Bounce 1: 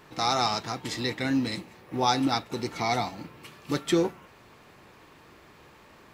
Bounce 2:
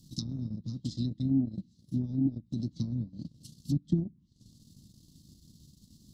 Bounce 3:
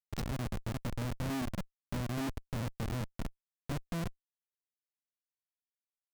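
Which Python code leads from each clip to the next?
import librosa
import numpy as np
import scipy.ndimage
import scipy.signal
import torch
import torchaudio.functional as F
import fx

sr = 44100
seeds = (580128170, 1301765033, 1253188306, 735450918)

y1 = fx.env_lowpass_down(x, sr, base_hz=540.0, full_db=-23.5)
y1 = scipy.signal.sosfilt(scipy.signal.cheby2(4, 40, [430.0, 2500.0], 'bandstop', fs=sr, output='sos'), y1)
y1 = fx.transient(y1, sr, attack_db=4, sustain_db=-11)
y1 = y1 * librosa.db_to_amplitude(3.5)
y2 = fx.schmitt(y1, sr, flips_db=-35.0)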